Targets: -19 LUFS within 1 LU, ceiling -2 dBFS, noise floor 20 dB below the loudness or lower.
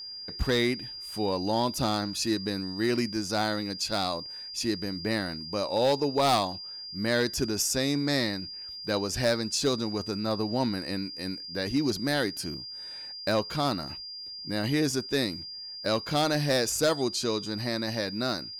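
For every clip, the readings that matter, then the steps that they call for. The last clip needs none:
clipped 0.5%; flat tops at -18.0 dBFS; steady tone 4800 Hz; tone level -38 dBFS; loudness -29.0 LUFS; peak -18.0 dBFS; loudness target -19.0 LUFS
-> clip repair -18 dBFS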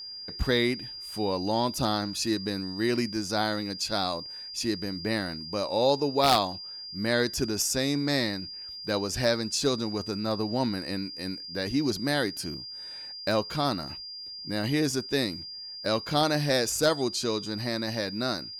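clipped 0.0%; steady tone 4800 Hz; tone level -38 dBFS
-> notch 4800 Hz, Q 30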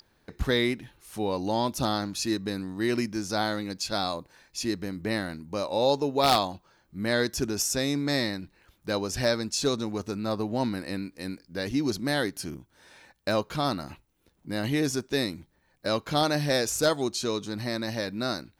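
steady tone none; loudness -28.5 LUFS; peak -8.5 dBFS; loudness target -19.0 LUFS
-> gain +9.5 dB; limiter -2 dBFS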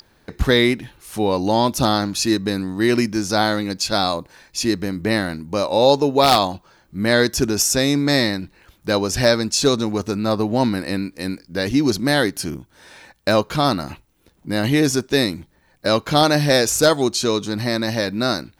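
loudness -19.0 LUFS; peak -2.0 dBFS; noise floor -58 dBFS

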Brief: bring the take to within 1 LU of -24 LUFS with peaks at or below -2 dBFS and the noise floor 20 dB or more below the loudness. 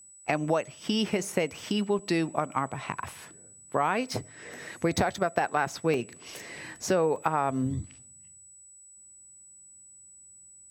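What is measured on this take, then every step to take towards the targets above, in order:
dropouts 3; longest dropout 2.1 ms; steady tone 7900 Hz; tone level -50 dBFS; loudness -29.5 LUFS; peak -8.5 dBFS; loudness target -24.0 LUFS
-> interpolate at 1.99/5.94/7.16, 2.1 ms; notch 7900 Hz, Q 30; gain +5.5 dB

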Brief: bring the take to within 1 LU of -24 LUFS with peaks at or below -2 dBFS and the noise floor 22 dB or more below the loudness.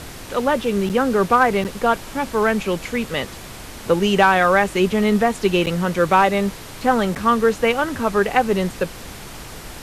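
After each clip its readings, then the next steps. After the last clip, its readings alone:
dropouts 4; longest dropout 8.4 ms; noise floor -36 dBFS; noise floor target -41 dBFS; loudness -19.0 LUFS; peak -3.0 dBFS; loudness target -24.0 LUFS
-> interpolate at 0.89/1.64/5.66/7.15, 8.4 ms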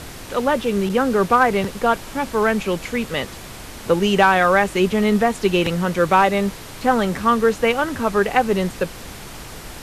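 dropouts 0; noise floor -36 dBFS; noise floor target -41 dBFS
-> noise print and reduce 6 dB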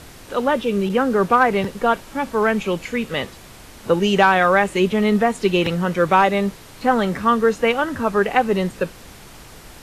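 noise floor -42 dBFS; loudness -19.0 LUFS; peak -3.0 dBFS; loudness target -24.0 LUFS
-> gain -5 dB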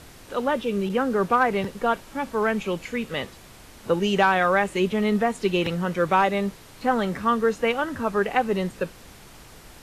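loudness -24.0 LUFS; peak -8.0 dBFS; noise floor -47 dBFS

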